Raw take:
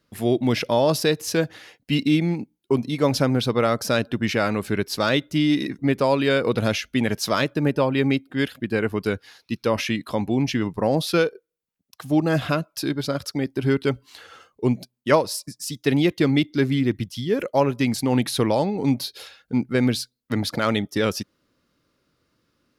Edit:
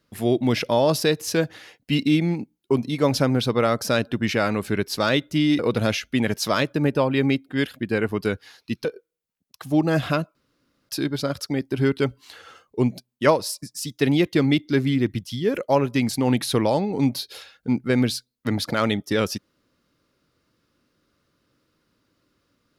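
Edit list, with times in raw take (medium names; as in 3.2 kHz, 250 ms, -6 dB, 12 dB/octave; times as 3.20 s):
5.59–6.40 s: delete
9.66–11.24 s: delete
12.74 s: insert room tone 0.54 s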